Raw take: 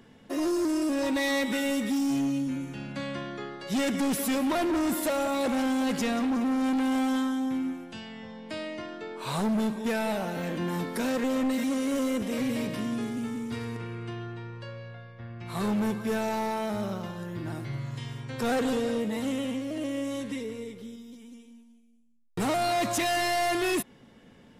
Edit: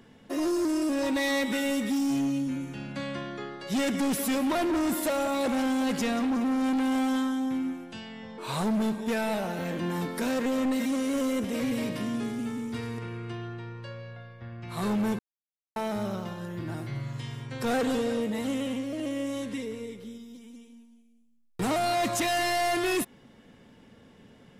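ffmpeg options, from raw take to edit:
-filter_complex "[0:a]asplit=4[s0][s1][s2][s3];[s0]atrim=end=8.382[s4];[s1]atrim=start=9.158:end=15.97,asetpts=PTS-STARTPTS,afade=t=out:st=6.808:d=0.004:c=hsin[s5];[s2]atrim=start=15.97:end=16.54,asetpts=PTS-STARTPTS,volume=0[s6];[s3]atrim=start=16.54,asetpts=PTS-STARTPTS,afade=t=in:d=0.004:c=hsin[s7];[s5][s6][s7]concat=n=3:v=0:a=1[s8];[s4][s8]acrossfade=d=0.004:c1=hsin:c2=hsin"

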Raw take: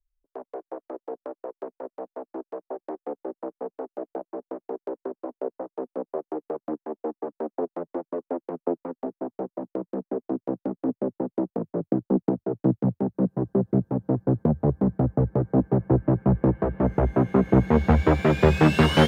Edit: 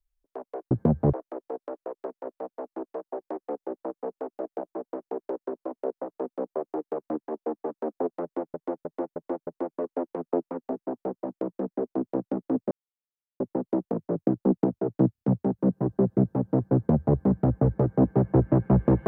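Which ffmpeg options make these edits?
-filter_complex "[0:a]asplit=11[s0][s1][s2][s3][s4][s5][s6][s7][s8][s9][s10];[s0]atrim=end=0.712[s11];[s1]atrim=start=14.308:end=14.732[s12];[s2]atrim=start=0.708:end=8.122[s13];[s3]atrim=start=7.808:end=8.122[s14];[s4]atrim=start=7.808:end=8.122[s15];[s5]atrim=start=7.808:end=8.122[s16];[s6]atrim=start=7.808:end=11.05,asetpts=PTS-STARTPTS,afade=t=out:st=3.238:d=0.004:c=hsin,apad=pad_dur=0.69[s17];[s7]atrim=start=11.05:end=12.802,asetpts=PTS-STARTPTS,afade=t=in:d=0.004:c=hsin[s18];[s8]atrim=start=12.768:end=12.802[s19];[s9]atrim=start=12.768:end=12.802[s20];[s10]atrim=start=12.768[s21];[s11][s12]acrossfade=d=0.004:c1=hsin:c2=hsin[s22];[s22][s13]acrossfade=d=0.004:c1=hsin:c2=hsin[s23];[s23][s14]acrossfade=d=0.004:c1=hsin:c2=hsin[s24];[s24][s15]acrossfade=d=0.004:c1=hsin:c2=hsin[s25];[s25][s16]acrossfade=d=0.004:c1=hsin:c2=hsin[s26];[s17][s18]concat=n=2:v=0:a=1[s27];[s26][s27]acrossfade=d=0.004:c1=hsin:c2=hsin[s28];[s28][s19]acrossfade=d=0.004:c1=hsin:c2=hsin[s29];[s29][s20]acrossfade=d=0.004:c1=hsin:c2=hsin[s30];[s30][s21]acrossfade=d=0.004:c1=hsin:c2=hsin"

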